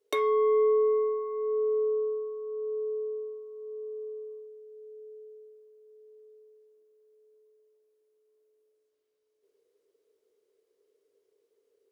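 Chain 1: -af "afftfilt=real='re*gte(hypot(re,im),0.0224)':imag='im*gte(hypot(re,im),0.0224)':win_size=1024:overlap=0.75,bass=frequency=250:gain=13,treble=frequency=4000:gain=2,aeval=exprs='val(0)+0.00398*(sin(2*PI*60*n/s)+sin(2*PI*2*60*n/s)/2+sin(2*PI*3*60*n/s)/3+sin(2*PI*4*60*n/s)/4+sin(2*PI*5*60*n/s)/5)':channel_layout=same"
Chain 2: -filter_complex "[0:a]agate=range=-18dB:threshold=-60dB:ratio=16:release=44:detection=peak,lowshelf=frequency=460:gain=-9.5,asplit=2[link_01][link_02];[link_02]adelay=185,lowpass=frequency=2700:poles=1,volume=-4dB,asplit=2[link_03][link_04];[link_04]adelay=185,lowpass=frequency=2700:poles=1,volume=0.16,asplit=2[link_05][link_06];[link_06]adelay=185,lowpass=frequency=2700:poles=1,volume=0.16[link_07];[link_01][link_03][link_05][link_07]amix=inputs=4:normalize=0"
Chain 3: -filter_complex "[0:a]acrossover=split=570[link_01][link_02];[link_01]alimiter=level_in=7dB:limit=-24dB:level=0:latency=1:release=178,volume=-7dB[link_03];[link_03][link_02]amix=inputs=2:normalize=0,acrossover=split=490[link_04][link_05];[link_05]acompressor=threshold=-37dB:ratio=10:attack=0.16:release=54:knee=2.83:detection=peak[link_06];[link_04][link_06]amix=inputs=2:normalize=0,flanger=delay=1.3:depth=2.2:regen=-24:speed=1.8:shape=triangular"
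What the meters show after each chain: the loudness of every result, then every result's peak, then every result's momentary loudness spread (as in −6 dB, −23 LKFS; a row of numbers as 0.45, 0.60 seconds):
−27.5, −34.0, −37.5 LKFS; −15.5, −19.5, −27.5 dBFS; 23, 20, 17 LU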